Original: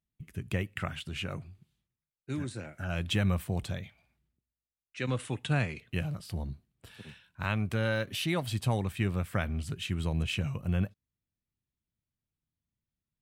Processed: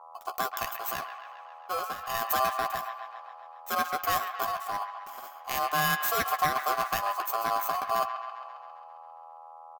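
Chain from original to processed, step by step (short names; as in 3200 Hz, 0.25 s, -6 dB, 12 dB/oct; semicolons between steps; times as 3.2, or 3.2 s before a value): FFT order left unsorted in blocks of 16 samples; in parallel at 0 dB: limiter -22 dBFS, peak gain reduction 7 dB; on the sum: hum 60 Hz, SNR 18 dB; speed mistake 33 rpm record played at 45 rpm; transient shaper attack -1 dB, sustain -6 dB; ring modulator 910 Hz; tilt shelf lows -4 dB; doubler 12 ms -10.5 dB; on a send: band-limited delay 0.134 s, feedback 65%, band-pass 1600 Hz, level -7 dB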